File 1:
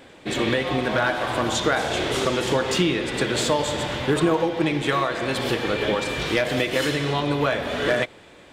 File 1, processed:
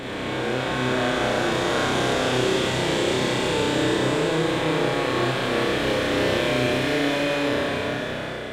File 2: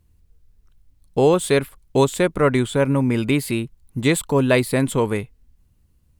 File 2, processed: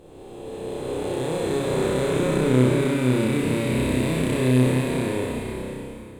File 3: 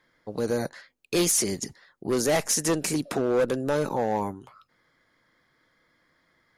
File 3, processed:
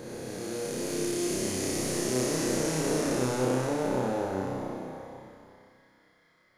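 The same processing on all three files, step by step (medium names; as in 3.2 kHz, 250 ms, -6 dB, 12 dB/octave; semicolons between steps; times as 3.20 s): spectral blur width 1430 ms; flutter echo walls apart 5.4 m, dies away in 0.79 s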